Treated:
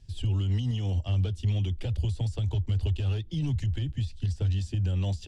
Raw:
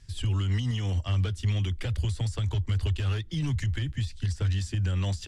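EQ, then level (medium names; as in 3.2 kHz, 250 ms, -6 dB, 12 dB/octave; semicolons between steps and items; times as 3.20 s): high-order bell 1.5 kHz -10 dB 1.3 oct; treble shelf 4 kHz -9.5 dB; 0.0 dB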